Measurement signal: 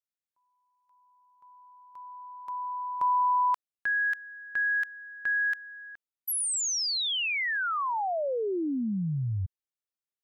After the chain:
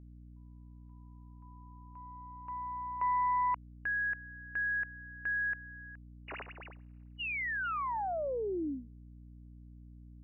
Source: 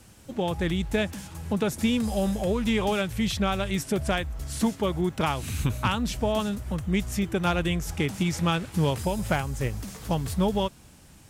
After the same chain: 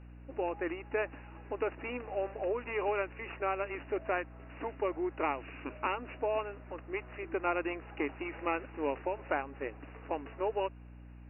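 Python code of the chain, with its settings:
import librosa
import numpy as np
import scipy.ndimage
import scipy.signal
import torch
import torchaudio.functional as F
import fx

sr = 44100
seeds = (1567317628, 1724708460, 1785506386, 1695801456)

y = fx.tracing_dist(x, sr, depth_ms=0.16)
y = fx.brickwall_bandpass(y, sr, low_hz=260.0, high_hz=2900.0)
y = fx.air_absorb(y, sr, metres=85.0)
y = fx.add_hum(y, sr, base_hz=60, snr_db=14)
y = y * 10.0 ** (-5.0 / 20.0)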